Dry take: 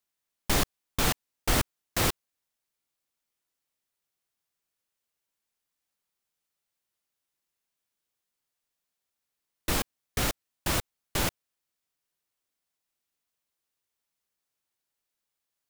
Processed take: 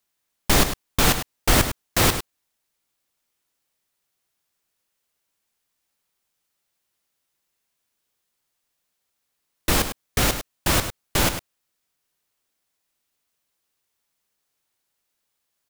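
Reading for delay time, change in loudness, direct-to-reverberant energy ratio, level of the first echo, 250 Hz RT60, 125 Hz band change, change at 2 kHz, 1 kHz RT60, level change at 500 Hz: 102 ms, +8.0 dB, no reverb audible, −10.0 dB, no reverb audible, +8.0 dB, +8.0 dB, no reverb audible, +8.0 dB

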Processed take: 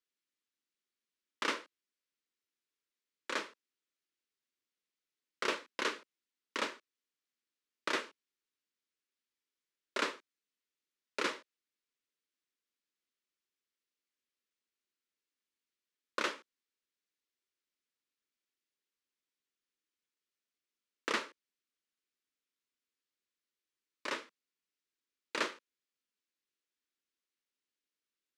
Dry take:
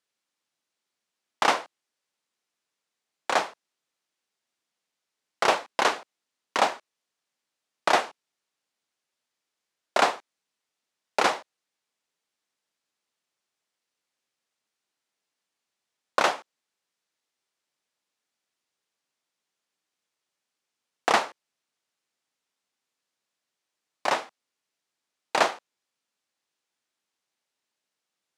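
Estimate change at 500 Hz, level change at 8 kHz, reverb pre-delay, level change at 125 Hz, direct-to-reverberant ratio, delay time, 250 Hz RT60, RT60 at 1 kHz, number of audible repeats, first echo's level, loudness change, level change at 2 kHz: −13.5 dB, −11.0 dB, no reverb audible, below −10 dB, no reverb audible, no echo audible, no reverb audible, no reverb audible, no echo audible, no echo audible, −12.0 dB, −9.5 dB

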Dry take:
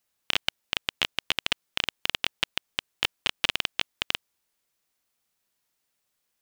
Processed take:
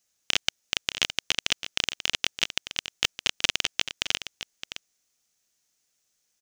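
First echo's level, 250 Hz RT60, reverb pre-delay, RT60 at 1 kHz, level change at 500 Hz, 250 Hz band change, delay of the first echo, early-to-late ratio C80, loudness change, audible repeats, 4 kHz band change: −11.5 dB, no reverb audible, no reverb audible, no reverb audible, −0.5 dB, 0.0 dB, 615 ms, no reverb audible, +2.0 dB, 1, +2.0 dB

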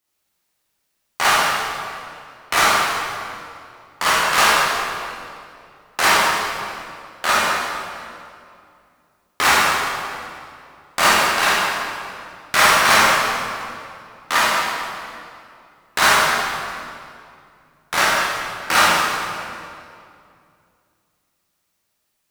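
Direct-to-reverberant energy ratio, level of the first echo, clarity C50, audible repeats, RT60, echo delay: −8.0 dB, no echo audible, −3.5 dB, no echo audible, 2.4 s, no echo audible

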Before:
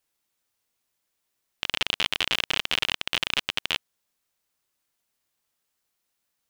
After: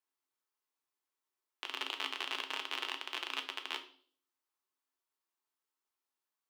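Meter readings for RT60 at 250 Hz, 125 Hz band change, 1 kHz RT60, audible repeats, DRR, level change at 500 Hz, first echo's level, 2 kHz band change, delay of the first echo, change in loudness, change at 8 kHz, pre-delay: 0.75 s, below −40 dB, 0.45 s, no echo audible, 5.0 dB, −11.0 dB, no echo audible, −12.5 dB, no echo audible, −12.5 dB, −14.5 dB, 5 ms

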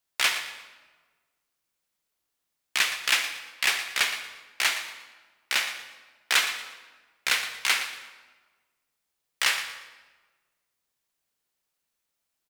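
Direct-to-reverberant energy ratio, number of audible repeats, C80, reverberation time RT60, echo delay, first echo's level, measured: 7.5 dB, 2, 9.0 dB, 1.4 s, 117 ms, −12.5 dB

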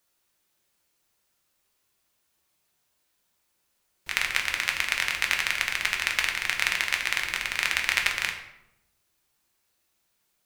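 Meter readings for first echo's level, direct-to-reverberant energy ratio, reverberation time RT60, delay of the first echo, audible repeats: no echo audible, 1.0 dB, 0.85 s, no echo audible, no echo audible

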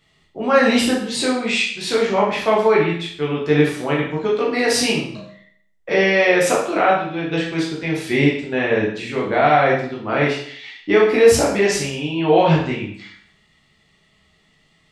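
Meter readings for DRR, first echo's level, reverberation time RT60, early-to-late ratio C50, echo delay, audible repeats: −5.0 dB, no echo audible, 0.60 s, 4.0 dB, no echo audible, no echo audible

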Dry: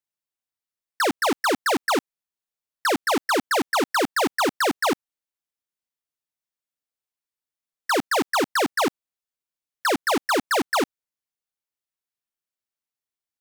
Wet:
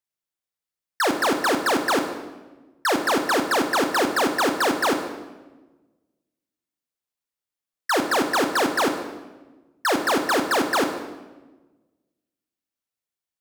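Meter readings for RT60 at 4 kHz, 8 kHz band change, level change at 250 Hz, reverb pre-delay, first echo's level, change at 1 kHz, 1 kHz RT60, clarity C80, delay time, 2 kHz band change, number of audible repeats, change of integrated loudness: 0.90 s, +1.0 dB, +2.0 dB, 24 ms, no echo audible, +1.0 dB, 1.1 s, 9.5 dB, no echo audible, +1.0 dB, no echo audible, +1.0 dB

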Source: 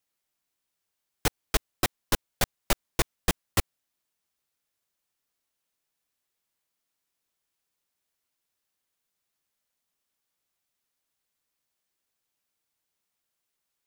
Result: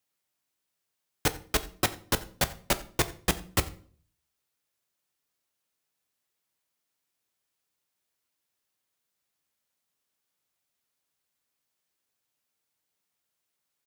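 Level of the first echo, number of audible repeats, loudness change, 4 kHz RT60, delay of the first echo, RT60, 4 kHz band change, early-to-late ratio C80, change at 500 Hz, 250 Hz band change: −22.5 dB, 1, +0.5 dB, 0.35 s, 88 ms, 0.50 s, +0.5 dB, 19.5 dB, +1.0 dB, +0.5 dB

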